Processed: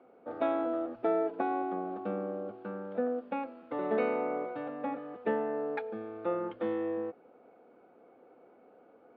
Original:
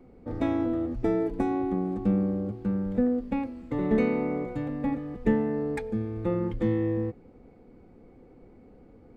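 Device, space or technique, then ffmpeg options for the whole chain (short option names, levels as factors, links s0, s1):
phone earpiece: -af "highpass=490,equalizer=f=650:t=q:w=4:g=7,equalizer=f=1400:t=q:w=4:g=7,equalizer=f=2000:t=q:w=4:g=-8,lowpass=f=3300:w=0.5412,lowpass=f=3300:w=1.3066"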